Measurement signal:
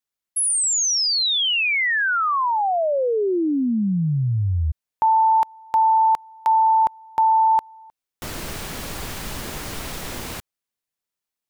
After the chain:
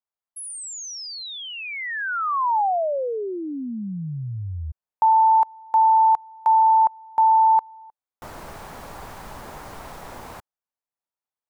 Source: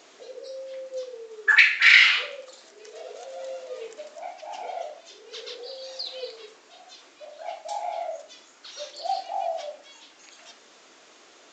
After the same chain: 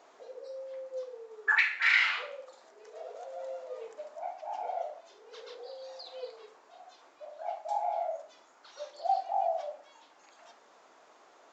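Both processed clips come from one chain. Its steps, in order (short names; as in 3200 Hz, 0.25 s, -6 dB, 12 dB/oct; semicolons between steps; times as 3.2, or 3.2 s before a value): EQ curve 340 Hz 0 dB, 870 Hz +10 dB, 2900 Hz -5 dB; gain -9 dB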